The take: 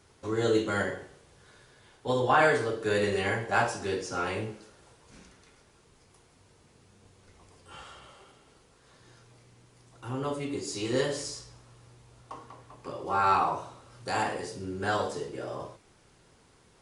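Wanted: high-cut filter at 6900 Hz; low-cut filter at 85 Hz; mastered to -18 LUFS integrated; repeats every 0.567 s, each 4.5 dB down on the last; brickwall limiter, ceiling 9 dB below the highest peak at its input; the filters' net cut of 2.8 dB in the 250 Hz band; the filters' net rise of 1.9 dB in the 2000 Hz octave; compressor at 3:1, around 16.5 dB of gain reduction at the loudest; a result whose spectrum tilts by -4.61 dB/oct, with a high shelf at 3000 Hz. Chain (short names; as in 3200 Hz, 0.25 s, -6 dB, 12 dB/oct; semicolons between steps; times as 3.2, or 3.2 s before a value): HPF 85 Hz; LPF 6900 Hz; bell 250 Hz -4 dB; bell 2000 Hz +4 dB; high shelf 3000 Hz -4 dB; compressor 3:1, threshold -41 dBFS; limiter -35 dBFS; feedback echo 0.567 s, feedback 60%, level -4.5 dB; gain +26.5 dB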